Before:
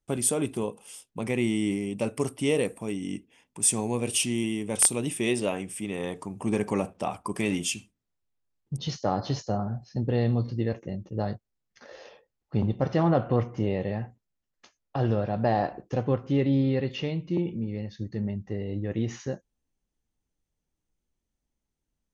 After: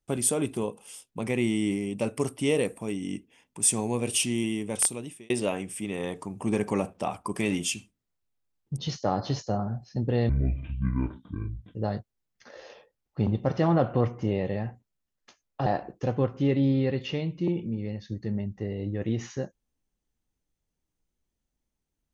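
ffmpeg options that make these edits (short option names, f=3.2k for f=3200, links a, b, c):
-filter_complex "[0:a]asplit=5[a][b][c][d][e];[a]atrim=end=5.3,asetpts=PTS-STARTPTS,afade=t=out:st=4.6:d=0.7[f];[b]atrim=start=5.3:end=10.294,asetpts=PTS-STARTPTS,afade=t=in:d=0.004:c=hsin[g];[c]atrim=start=10.29:end=11.11,asetpts=PTS-STARTPTS,asetrate=24696,aresample=44100[h];[d]atrim=start=11.106:end=15.022[i];[e]atrim=start=15.558[j];[f][g]concat=n=2:v=0:a=1[k];[k][h]acrossfade=d=0.004:c1=hsin:c2=hsin[l];[l][i]acrossfade=d=0.004:c1=hsin:c2=hsin[m];[m][j]acrossfade=d=0.004:c1=hsin:c2=hsin"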